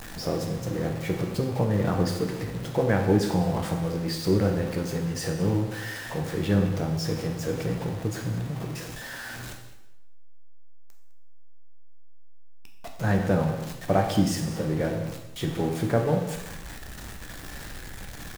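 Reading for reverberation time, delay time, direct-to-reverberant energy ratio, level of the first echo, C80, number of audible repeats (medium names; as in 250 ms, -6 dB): 0.90 s, 206 ms, 2.0 dB, -16.0 dB, 7.5 dB, 1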